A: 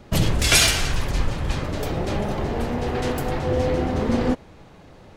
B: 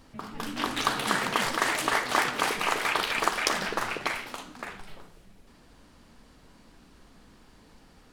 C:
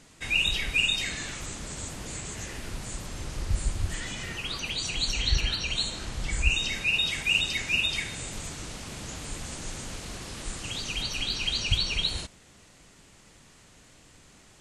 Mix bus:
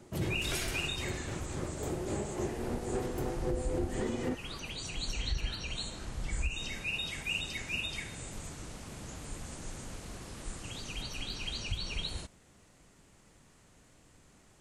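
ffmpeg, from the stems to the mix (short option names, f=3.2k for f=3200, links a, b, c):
-filter_complex "[0:a]highpass=f=67:w=0.5412,highpass=f=67:w=1.3066,equalizer=f=360:t=o:w=0.27:g=10.5,tremolo=f=3.7:d=0.51,volume=-10dB[a];[2:a]volume=-4.5dB[b];[a][b]amix=inputs=2:normalize=0,equalizer=f=3.8k:w=0.54:g=-6.5,alimiter=limit=-23dB:level=0:latency=1:release=145"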